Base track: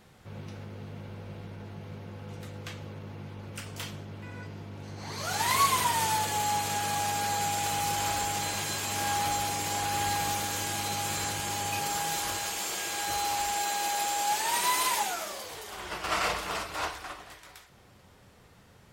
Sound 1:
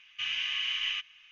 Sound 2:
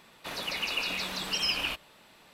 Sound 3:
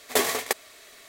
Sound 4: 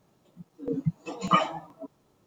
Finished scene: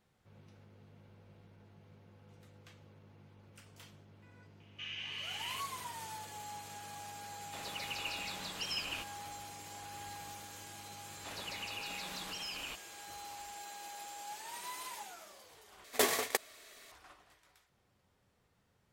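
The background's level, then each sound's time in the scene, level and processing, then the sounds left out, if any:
base track −17.5 dB
0:04.60: mix in 1 −11 dB
0:07.28: mix in 2 −9.5 dB
0:11.00: mix in 2 −9 dB + brickwall limiter −25 dBFS
0:15.84: overwrite with 3 −6.5 dB
not used: 4

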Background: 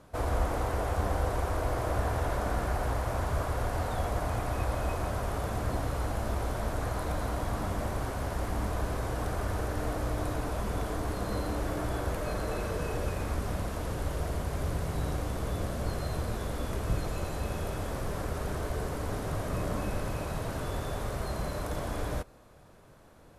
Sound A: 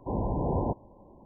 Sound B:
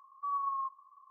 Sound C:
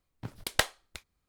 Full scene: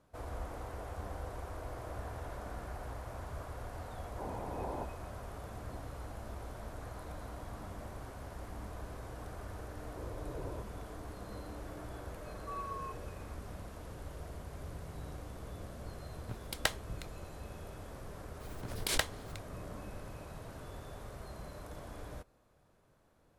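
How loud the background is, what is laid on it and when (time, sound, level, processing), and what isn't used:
background −13 dB
0:04.12: mix in A −6 dB + high-pass filter 630 Hz 6 dB per octave
0:09.89: mix in A −12.5 dB + phaser with its sweep stopped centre 790 Hz, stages 6
0:12.24: mix in B −8.5 dB
0:16.06: mix in C −6 dB
0:18.40: mix in C −6.5 dB + background raised ahead of every attack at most 58 dB per second

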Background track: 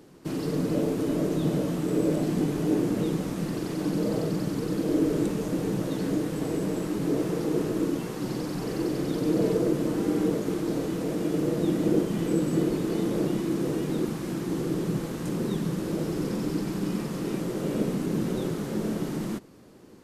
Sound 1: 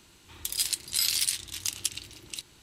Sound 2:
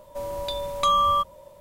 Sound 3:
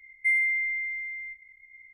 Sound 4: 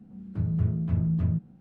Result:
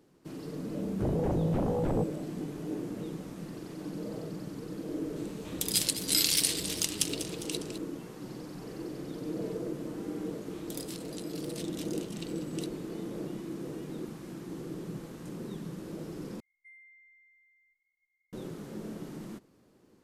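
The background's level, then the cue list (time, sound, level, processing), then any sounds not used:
background track −11.5 dB
0:00.65: mix in 4 −11 dB + sine wavefolder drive 14 dB, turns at −15 dBFS
0:05.16: mix in 1 + feedback echo with a swinging delay time 202 ms, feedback 57%, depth 199 cents, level −11 dB
0:10.25: mix in 1 −12 dB + compressor whose output falls as the input rises −33 dBFS, ratio −0.5
0:16.40: overwrite with 3 −17 dB + stiff-string resonator 140 Hz, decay 0.2 s, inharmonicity 0.008
not used: 2

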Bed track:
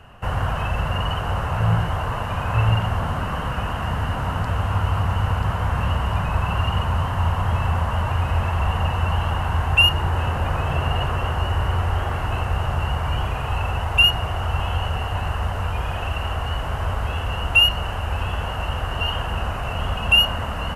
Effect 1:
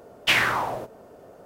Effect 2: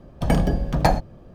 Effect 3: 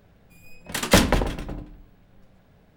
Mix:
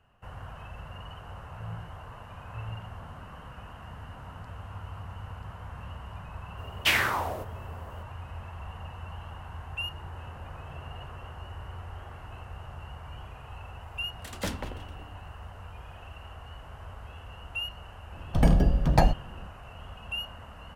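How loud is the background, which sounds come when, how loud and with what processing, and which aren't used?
bed track −19.5 dB
0:06.58: mix in 1 −4 dB + high-shelf EQ 11,000 Hz +10 dB
0:13.50: mix in 3 −17 dB
0:18.13: mix in 2 −5 dB + low-shelf EQ 120 Hz +7.5 dB

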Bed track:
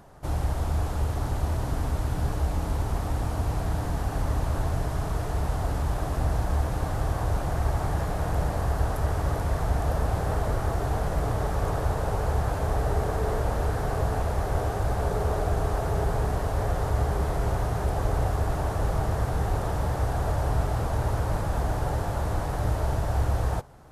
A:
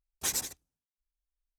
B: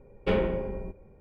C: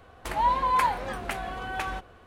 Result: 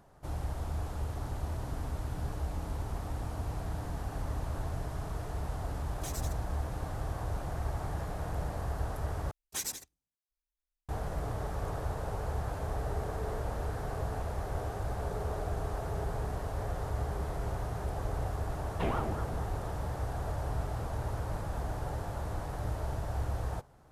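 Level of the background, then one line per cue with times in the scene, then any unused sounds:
bed track −9 dB
0:05.80: mix in A −4.5 dB + downward compressor 3 to 1, threshold −37 dBFS
0:09.31: overwrite with A −5 dB
0:18.53: mix in B −5.5 dB + ring modulator whose carrier an LFO sweeps 510 Hz, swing 75%, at 4.5 Hz
not used: C

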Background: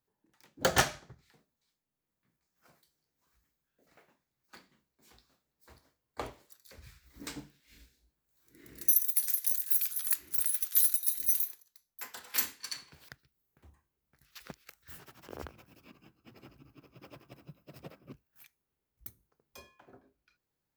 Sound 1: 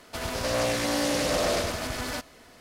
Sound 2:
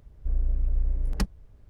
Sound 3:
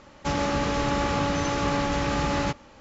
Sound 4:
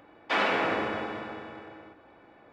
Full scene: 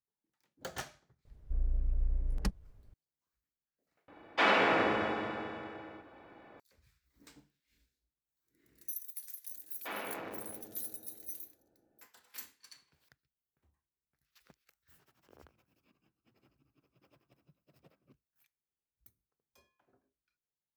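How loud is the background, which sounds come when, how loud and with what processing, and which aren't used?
background −16 dB
0:01.25: mix in 2 −6.5 dB
0:04.08: overwrite with 4 −0.5 dB
0:09.55: mix in 4 −14 dB + adaptive Wiener filter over 41 samples
not used: 1, 3

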